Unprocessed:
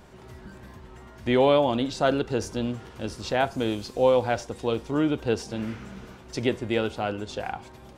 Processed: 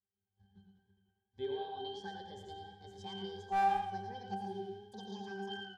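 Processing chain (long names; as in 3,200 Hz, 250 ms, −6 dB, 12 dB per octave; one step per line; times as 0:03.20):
gliding playback speed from 77% → 199%
noise gate −41 dBFS, range −30 dB
parametric band 4,900 Hz +12.5 dB 1.5 octaves
downward compressor, threshold −20 dBFS, peak gain reduction 6.5 dB
first-order pre-emphasis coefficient 0.8
resonances in every octave G, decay 0.47 s
asymmetric clip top −45 dBFS
single-tap delay 112 ms −7 dB
feedback echo with a swinging delay time 87 ms, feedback 48%, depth 64 cents, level −8.5 dB
level +13.5 dB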